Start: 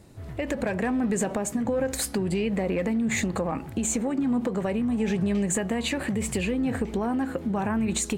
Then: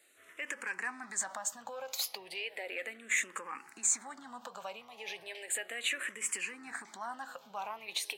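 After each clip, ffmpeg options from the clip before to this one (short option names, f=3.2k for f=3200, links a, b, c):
-filter_complex "[0:a]highpass=1.2k,asplit=2[a][b];[b]afreqshift=-0.35[c];[a][c]amix=inputs=2:normalize=1"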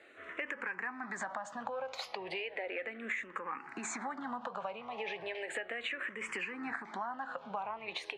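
-filter_complex "[0:a]lowpass=1.9k,acrossover=split=110[a][b];[b]acompressor=threshold=-50dB:ratio=6[c];[a][c]amix=inputs=2:normalize=0,volume=13.5dB"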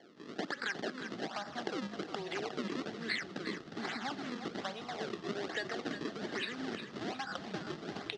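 -filter_complex "[0:a]acrusher=samples=34:mix=1:aa=0.000001:lfo=1:lforange=54.4:lforate=1.2,highpass=f=200:w=0.5412,highpass=f=200:w=1.3066,equalizer=f=270:t=q:w=4:g=-3,equalizer=f=540:t=q:w=4:g=-8,equalizer=f=980:t=q:w=4:g=-9,equalizer=f=2.4k:t=q:w=4:g=-7,lowpass=f=5.3k:w=0.5412,lowpass=f=5.3k:w=1.3066,asplit=2[a][b];[b]asplit=5[c][d][e][f][g];[c]adelay=359,afreqshift=-31,volume=-9dB[h];[d]adelay=718,afreqshift=-62,volume=-15.7dB[i];[e]adelay=1077,afreqshift=-93,volume=-22.5dB[j];[f]adelay=1436,afreqshift=-124,volume=-29.2dB[k];[g]adelay=1795,afreqshift=-155,volume=-36dB[l];[h][i][j][k][l]amix=inputs=5:normalize=0[m];[a][m]amix=inputs=2:normalize=0,volume=4dB"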